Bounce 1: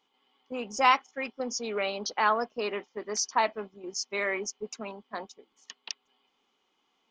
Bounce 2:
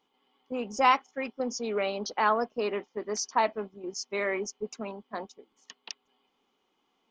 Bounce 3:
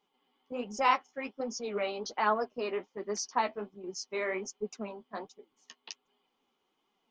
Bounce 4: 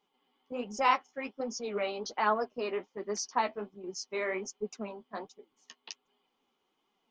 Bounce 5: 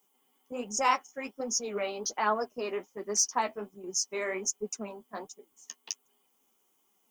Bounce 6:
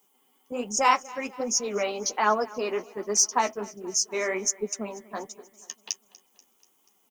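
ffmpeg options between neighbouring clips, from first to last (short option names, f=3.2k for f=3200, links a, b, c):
-af "tiltshelf=f=970:g=3.5"
-af "flanger=delay=4.8:depth=8.2:regen=25:speed=1.3:shape=sinusoidal"
-af anull
-af "aexciter=amount=4.2:drive=9.6:freq=6.1k"
-af "aecho=1:1:242|484|726|968|1210:0.0841|0.0496|0.0293|0.0173|0.0102,volume=5dB"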